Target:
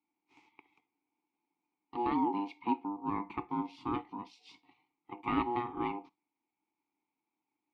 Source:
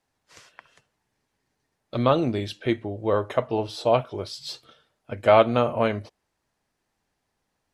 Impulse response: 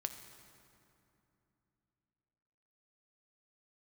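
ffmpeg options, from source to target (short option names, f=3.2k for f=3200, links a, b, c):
-filter_complex "[0:a]aeval=exprs='val(0)*sin(2*PI*600*n/s)':c=same,asplit=3[a][b][c];[a]bandpass=f=300:t=q:w=8,volume=0dB[d];[b]bandpass=f=870:t=q:w=8,volume=-6dB[e];[c]bandpass=f=2.24k:t=q:w=8,volume=-9dB[f];[d][e][f]amix=inputs=3:normalize=0,asplit=2[g][h];[1:a]atrim=start_sample=2205,atrim=end_sample=3087[i];[h][i]afir=irnorm=-1:irlink=0,volume=0.5dB[j];[g][j]amix=inputs=2:normalize=0"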